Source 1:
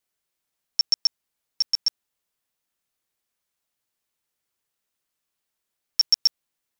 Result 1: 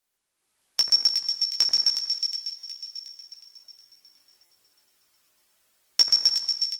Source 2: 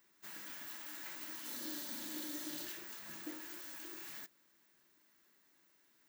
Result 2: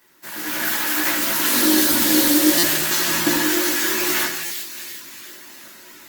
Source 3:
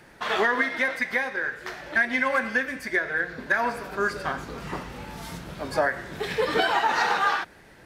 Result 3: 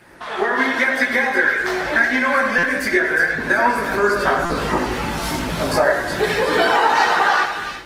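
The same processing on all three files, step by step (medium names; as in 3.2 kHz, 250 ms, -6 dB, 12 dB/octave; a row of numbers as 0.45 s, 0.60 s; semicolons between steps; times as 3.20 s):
two-slope reverb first 0.7 s, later 2.3 s, DRR 8 dB; compression 2:1, threshold -38 dBFS; bass shelf 120 Hz -6.5 dB; two-band feedback delay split 2 kHz, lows 87 ms, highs 364 ms, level -6.5 dB; chorus voices 4, 0.86 Hz, delay 18 ms, depth 1.7 ms; dynamic bell 3 kHz, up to -3 dB, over -47 dBFS, Q 1; level rider gain up to 11.5 dB; buffer glitch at 2.58/4.45 s, samples 256, times 8; Opus 24 kbps 48 kHz; peak normalisation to -2 dBFS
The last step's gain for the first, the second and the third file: +4.5 dB, +20.0 dB, +8.5 dB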